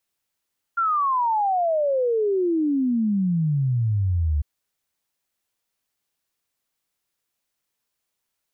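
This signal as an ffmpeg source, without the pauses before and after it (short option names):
-f lavfi -i "aevalsrc='0.119*clip(min(t,3.65-t)/0.01,0,1)*sin(2*PI*1400*3.65/log(71/1400)*(exp(log(71/1400)*t/3.65)-1))':d=3.65:s=44100"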